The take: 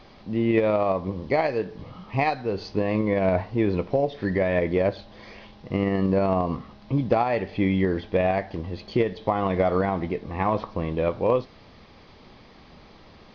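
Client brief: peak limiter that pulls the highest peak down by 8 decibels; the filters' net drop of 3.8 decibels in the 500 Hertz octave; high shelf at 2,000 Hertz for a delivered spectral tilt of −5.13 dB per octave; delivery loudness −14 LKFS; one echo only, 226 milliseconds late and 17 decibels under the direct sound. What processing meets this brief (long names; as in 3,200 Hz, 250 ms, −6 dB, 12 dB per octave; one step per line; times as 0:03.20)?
parametric band 500 Hz −5.5 dB
high-shelf EQ 2,000 Hz +8 dB
brickwall limiter −16.5 dBFS
single-tap delay 226 ms −17 dB
level +14.5 dB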